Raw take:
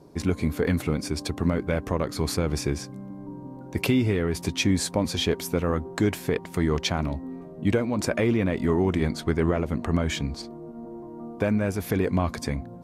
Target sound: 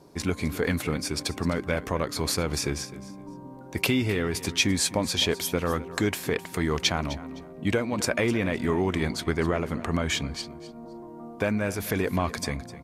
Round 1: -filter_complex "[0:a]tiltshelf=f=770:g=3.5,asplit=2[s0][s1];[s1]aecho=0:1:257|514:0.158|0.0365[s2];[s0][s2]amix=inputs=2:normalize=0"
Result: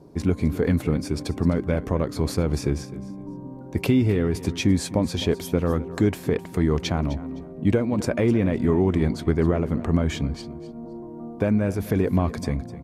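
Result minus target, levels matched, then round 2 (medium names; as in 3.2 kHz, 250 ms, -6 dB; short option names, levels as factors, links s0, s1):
1 kHz band -5.0 dB
-filter_complex "[0:a]tiltshelf=f=770:g=-4,asplit=2[s0][s1];[s1]aecho=0:1:257|514:0.158|0.0365[s2];[s0][s2]amix=inputs=2:normalize=0"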